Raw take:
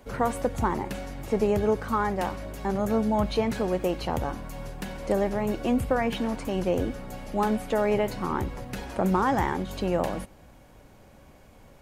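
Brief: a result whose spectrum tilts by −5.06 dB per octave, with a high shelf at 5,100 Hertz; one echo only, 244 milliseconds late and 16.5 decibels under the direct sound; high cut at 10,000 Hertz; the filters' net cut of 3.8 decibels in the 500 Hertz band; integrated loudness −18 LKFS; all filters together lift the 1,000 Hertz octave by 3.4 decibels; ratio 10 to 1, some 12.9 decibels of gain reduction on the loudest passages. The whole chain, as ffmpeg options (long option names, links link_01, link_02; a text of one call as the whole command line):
ffmpeg -i in.wav -af "lowpass=10000,equalizer=frequency=500:width_type=o:gain=-6.5,equalizer=frequency=1000:width_type=o:gain=6,highshelf=frequency=5100:gain=7.5,acompressor=threshold=-31dB:ratio=10,aecho=1:1:244:0.15,volume=18.5dB" out.wav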